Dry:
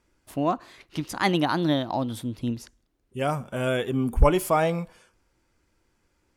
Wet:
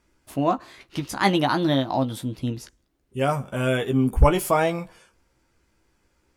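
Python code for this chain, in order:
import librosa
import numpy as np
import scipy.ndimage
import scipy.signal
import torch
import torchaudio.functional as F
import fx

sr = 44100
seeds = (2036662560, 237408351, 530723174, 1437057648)

y = fx.doubler(x, sr, ms=15.0, db=-7.0)
y = F.gain(torch.from_numpy(y), 2.0).numpy()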